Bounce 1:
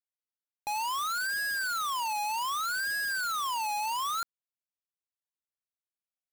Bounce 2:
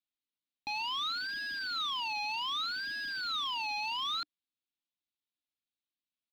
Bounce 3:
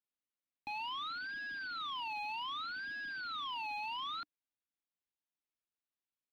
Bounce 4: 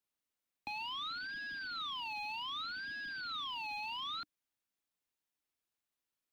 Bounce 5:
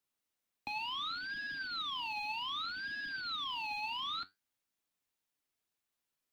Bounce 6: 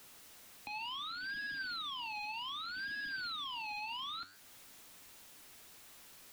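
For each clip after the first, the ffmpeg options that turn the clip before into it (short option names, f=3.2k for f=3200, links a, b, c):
-af "firequalizer=gain_entry='entry(110,0);entry(300,11);entry(480,-18);entry(700,-4);entry(1700,-4);entry(2400,5);entry(3800,10);entry(7400,-21)':delay=0.05:min_phase=1,volume=-3dB"
-filter_complex "[0:a]lowpass=2.7k,acrossover=split=630|1000[a][b][c];[a]acrusher=bits=4:mode=log:mix=0:aa=0.000001[d];[d][b][c]amix=inputs=3:normalize=0,volume=-3dB"
-filter_complex "[0:a]acrossover=split=240|3000[a][b][c];[b]acompressor=threshold=-49dB:ratio=3[d];[a][d][c]amix=inputs=3:normalize=0,volume=4dB"
-af "flanger=delay=6.9:depth=4.2:regen=70:speed=1.3:shape=triangular,volume=6.5dB"
-af "aeval=exprs='val(0)+0.5*0.00224*sgn(val(0))':c=same,alimiter=level_in=14dB:limit=-24dB:level=0:latency=1:release=319,volume=-14dB,volume=3dB"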